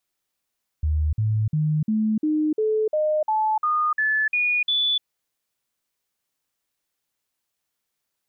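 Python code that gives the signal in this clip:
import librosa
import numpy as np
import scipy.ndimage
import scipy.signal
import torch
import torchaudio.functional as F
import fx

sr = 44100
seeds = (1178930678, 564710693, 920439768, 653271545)

y = fx.stepped_sweep(sr, from_hz=76.6, direction='up', per_octave=2, tones=12, dwell_s=0.3, gap_s=0.05, level_db=-18.5)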